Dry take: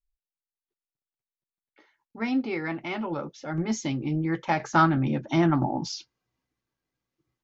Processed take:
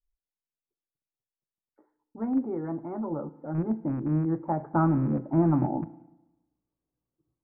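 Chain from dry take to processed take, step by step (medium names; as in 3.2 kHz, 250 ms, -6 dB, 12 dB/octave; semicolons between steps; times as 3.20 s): rattle on loud lows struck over -29 dBFS, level -16 dBFS; Bessel low-pass 730 Hz, order 8; FDN reverb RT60 0.97 s, low-frequency decay 1.05×, high-frequency decay 1×, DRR 14 dB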